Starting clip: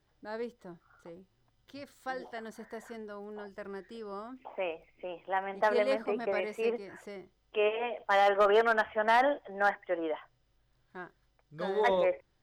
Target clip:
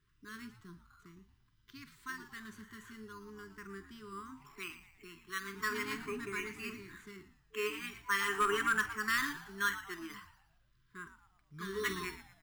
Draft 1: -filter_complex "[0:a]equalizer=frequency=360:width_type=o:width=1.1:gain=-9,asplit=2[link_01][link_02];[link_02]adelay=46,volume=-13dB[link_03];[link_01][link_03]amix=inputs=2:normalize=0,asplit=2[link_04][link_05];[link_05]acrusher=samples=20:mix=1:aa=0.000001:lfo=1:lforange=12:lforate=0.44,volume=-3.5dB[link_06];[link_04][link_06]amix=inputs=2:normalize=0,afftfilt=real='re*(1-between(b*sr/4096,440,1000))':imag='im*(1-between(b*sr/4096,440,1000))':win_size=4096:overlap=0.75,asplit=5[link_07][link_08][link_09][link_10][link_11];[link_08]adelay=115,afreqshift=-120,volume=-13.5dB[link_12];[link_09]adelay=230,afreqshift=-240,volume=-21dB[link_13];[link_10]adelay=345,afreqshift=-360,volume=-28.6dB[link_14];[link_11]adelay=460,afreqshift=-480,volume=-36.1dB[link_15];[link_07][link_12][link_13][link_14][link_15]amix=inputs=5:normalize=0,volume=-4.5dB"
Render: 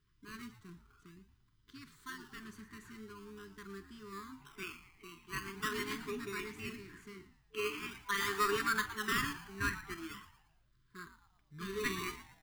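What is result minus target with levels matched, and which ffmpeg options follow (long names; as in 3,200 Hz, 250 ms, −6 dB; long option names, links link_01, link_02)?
sample-and-hold swept by an LFO: distortion +12 dB
-filter_complex "[0:a]equalizer=frequency=360:width_type=o:width=1.1:gain=-9,asplit=2[link_01][link_02];[link_02]adelay=46,volume=-13dB[link_03];[link_01][link_03]amix=inputs=2:normalize=0,asplit=2[link_04][link_05];[link_05]acrusher=samples=7:mix=1:aa=0.000001:lfo=1:lforange=4.2:lforate=0.44,volume=-3.5dB[link_06];[link_04][link_06]amix=inputs=2:normalize=0,afftfilt=real='re*(1-between(b*sr/4096,440,1000))':imag='im*(1-between(b*sr/4096,440,1000))':win_size=4096:overlap=0.75,asplit=5[link_07][link_08][link_09][link_10][link_11];[link_08]adelay=115,afreqshift=-120,volume=-13.5dB[link_12];[link_09]adelay=230,afreqshift=-240,volume=-21dB[link_13];[link_10]adelay=345,afreqshift=-360,volume=-28.6dB[link_14];[link_11]adelay=460,afreqshift=-480,volume=-36.1dB[link_15];[link_07][link_12][link_13][link_14][link_15]amix=inputs=5:normalize=0,volume=-4.5dB"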